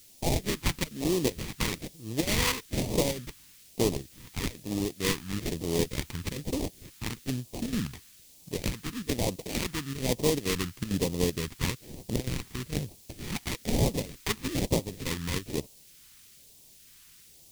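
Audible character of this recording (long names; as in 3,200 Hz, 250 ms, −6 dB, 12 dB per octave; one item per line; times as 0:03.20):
aliases and images of a low sample rate 1,500 Hz, jitter 20%
chopped level 2.2 Hz, depth 65%, duty 85%
a quantiser's noise floor 10 bits, dither triangular
phaser sweep stages 2, 1.1 Hz, lowest notch 570–1,400 Hz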